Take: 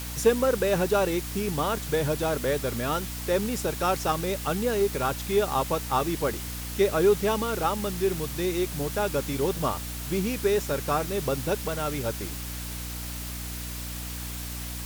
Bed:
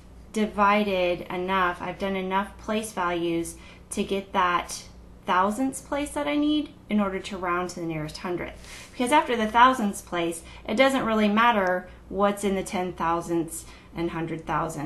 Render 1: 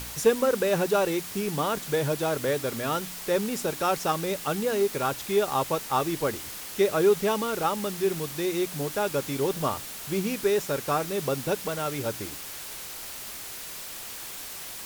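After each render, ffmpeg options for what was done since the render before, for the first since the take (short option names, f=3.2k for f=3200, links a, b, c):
-af "bandreject=f=60:t=h:w=4,bandreject=f=120:t=h:w=4,bandreject=f=180:t=h:w=4,bandreject=f=240:t=h:w=4,bandreject=f=300:t=h:w=4"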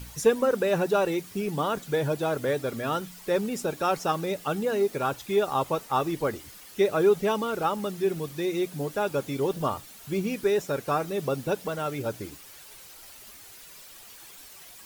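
-af "afftdn=nr=11:nf=-39"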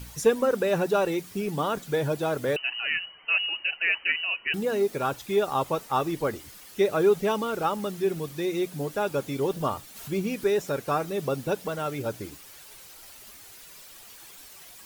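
-filter_complex "[0:a]asettb=1/sr,asplit=3[a][b][c];[a]atrim=end=2.564[d];[b]atrim=start=2.56:end=4.54,asetpts=PTS-STARTPTS,afade=t=in:d=0.004:c=qsin,afade=t=out:st=1.976:d=0.004:c=qsin,lowpass=f=2.6k:t=q:w=0.5098,lowpass=f=2.6k:t=q:w=0.6013,lowpass=f=2.6k:t=q:w=0.9,lowpass=f=2.6k:t=q:w=2.563,afreqshift=-3100[e];[c]atrim=start=4.536[f];[d][e]acrossfade=d=0.004:c1=hsin:c2=qsin[g];[g][f]acrossfade=d=0.004:c1=qsin:c2=hsin,asettb=1/sr,asplit=3[h][i][j];[h]atrim=end=6.904[k];[i]atrim=start=6.9:end=8,asetpts=PTS-STARTPTS,afade=t=in:d=0.004:c=qsin,afade=t=out:st=1.096:d=0.004:c=qsin,acrusher=bits=7:mix=0:aa=0.5[l];[j]atrim=start=7.996[m];[k][l]acrossfade=d=0.004:c1=hsin:c2=qsin[n];[n][m]acrossfade=d=0.004:c1=qsin:c2=hsin,asplit=3[o][p][q];[o]afade=t=out:st=9.95:d=0.02[r];[p]acompressor=mode=upward:threshold=-33dB:ratio=2.5:attack=3.2:release=140:knee=2.83:detection=peak,afade=t=in:st=9.95:d=0.02,afade=t=out:st=10.69:d=0.02[s];[q]afade=t=in:st=10.69:d=0.02[t];[r][s][t]amix=inputs=3:normalize=0"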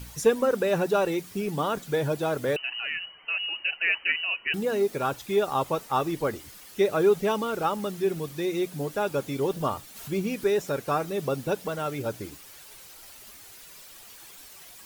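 -filter_complex "[0:a]asettb=1/sr,asplit=3[a][b][c];[a]atrim=end=2.564[d];[b]atrim=start=2.56:end=3.63,asetpts=PTS-STARTPTS,afade=t=in:d=0.004:c=qsin,afade=t=out:st=1.066:d=0.004:c=qsin,acompressor=threshold=-29dB:ratio=2:attack=3.2:release=140:knee=1:detection=peak[e];[c]atrim=start=3.626[f];[d][e]acrossfade=d=0.004:c1=hsin:c2=qsin[g];[g][f]acrossfade=d=0.004:c1=qsin:c2=hsin"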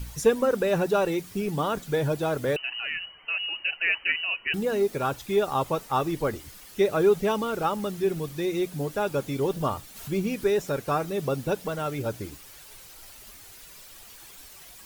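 -af "lowshelf=f=81:g=10.5"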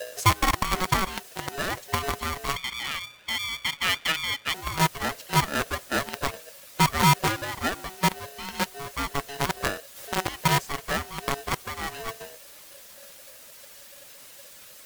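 -filter_complex "[0:a]acrossover=split=140|520|7900[a][b][c][d];[b]acrusher=bits=3:mix=0:aa=0.000001[e];[a][e][c][d]amix=inputs=4:normalize=0,aeval=exprs='val(0)*sgn(sin(2*PI*560*n/s))':c=same"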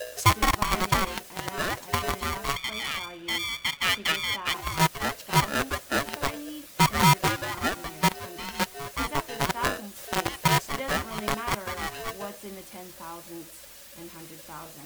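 -filter_complex "[1:a]volume=-16dB[a];[0:a][a]amix=inputs=2:normalize=0"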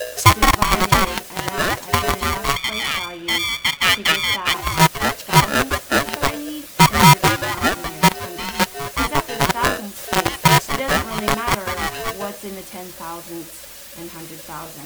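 -af "volume=9dB,alimiter=limit=-2dB:level=0:latency=1"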